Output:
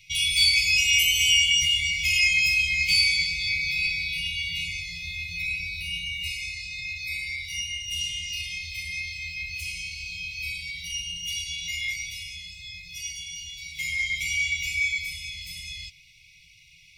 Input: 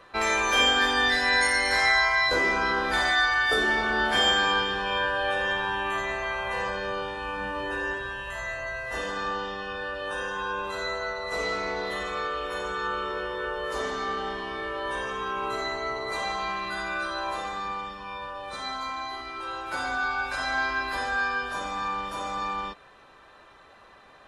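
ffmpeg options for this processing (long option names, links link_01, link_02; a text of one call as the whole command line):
ffmpeg -i in.wav -af "flanger=delay=3.6:depth=4.2:regen=-69:speed=1.6:shape=triangular,afftfilt=real='re*(1-between(b*sr/4096,120,1400))':imag='im*(1-between(b*sr/4096,120,1400))':win_size=4096:overlap=0.75,asetrate=63063,aresample=44100,volume=7.5dB" out.wav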